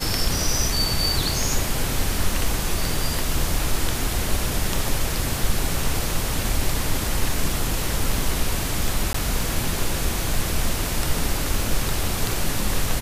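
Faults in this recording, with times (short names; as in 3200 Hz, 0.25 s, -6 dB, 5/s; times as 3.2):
9.13–9.14 gap 14 ms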